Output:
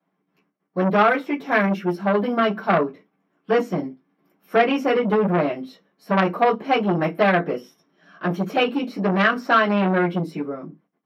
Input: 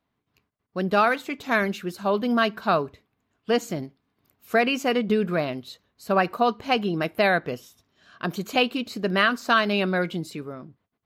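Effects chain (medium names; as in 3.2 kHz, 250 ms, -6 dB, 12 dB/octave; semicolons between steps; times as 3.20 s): high-pass 190 Hz 12 dB/octave; reverberation RT60 0.15 s, pre-delay 3 ms, DRR -10.5 dB; transformer saturation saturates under 1.3 kHz; trim -14.5 dB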